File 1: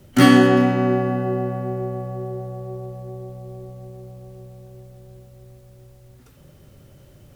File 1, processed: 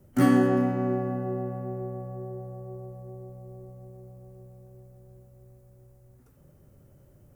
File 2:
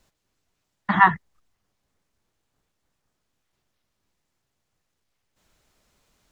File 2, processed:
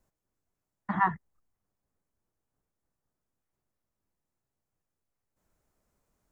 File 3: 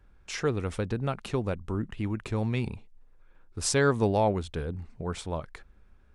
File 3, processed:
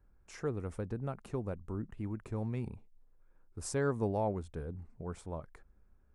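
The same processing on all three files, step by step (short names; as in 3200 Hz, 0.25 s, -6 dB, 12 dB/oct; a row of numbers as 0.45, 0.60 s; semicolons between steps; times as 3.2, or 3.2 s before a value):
bell 3500 Hz -13.5 dB 1.7 oct; gain -7.5 dB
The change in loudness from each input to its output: -8.0, -10.5, -8.5 LU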